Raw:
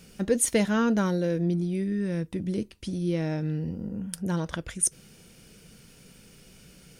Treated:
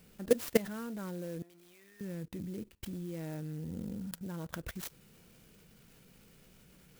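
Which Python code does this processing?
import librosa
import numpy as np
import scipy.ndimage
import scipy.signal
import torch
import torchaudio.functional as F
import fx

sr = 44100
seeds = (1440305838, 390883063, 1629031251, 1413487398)

y = fx.highpass(x, sr, hz=1100.0, slope=12, at=(1.42, 2.01))
y = fx.level_steps(y, sr, step_db=20)
y = fx.clock_jitter(y, sr, seeds[0], jitter_ms=0.051)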